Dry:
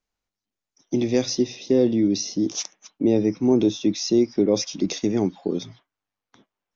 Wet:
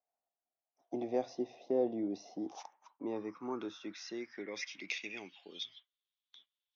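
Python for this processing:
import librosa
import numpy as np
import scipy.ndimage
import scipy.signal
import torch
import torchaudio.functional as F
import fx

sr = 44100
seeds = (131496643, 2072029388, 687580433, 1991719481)

y = fx.filter_sweep_bandpass(x, sr, from_hz=700.0, to_hz=3500.0, start_s=2.22, end_s=5.86, q=7.6)
y = fx.dynamic_eq(y, sr, hz=630.0, q=2.1, threshold_db=-56.0, ratio=4.0, max_db=-6)
y = y * 10.0 ** (7.5 / 20.0)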